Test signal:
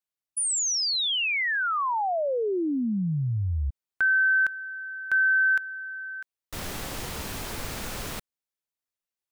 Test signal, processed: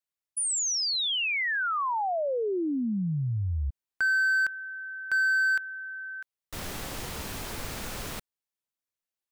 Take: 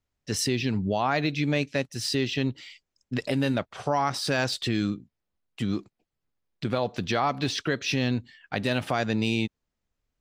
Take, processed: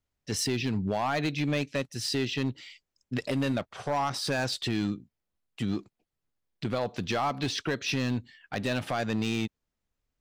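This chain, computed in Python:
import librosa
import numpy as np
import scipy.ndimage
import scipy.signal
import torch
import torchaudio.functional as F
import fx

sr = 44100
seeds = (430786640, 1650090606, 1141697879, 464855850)

y = np.clip(x, -10.0 ** (-20.0 / 20.0), 10.0 ** (-20.0 / 20.0))
y = y * 10.0 ** (-2.0 / 20.0)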